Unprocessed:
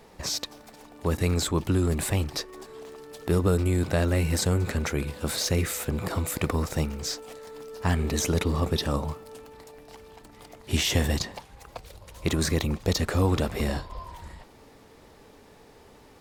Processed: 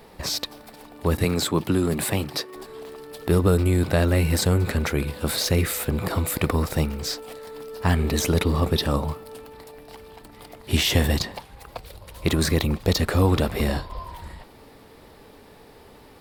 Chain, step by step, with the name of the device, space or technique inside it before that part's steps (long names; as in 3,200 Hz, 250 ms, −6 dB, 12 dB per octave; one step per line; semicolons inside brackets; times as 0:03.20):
0:01.24–0:02.56: high-pass filter 110 Hz 24 dB per octave
exciter from parts (in parallel at −4 dB: high-pass filter 4,900 Hz 12 dB per octave + soft clipping −27 dBFS, distortion −14 dB + high-pass filter 4,500 Hz 24 dB per octave)
on the sum: level +4 dB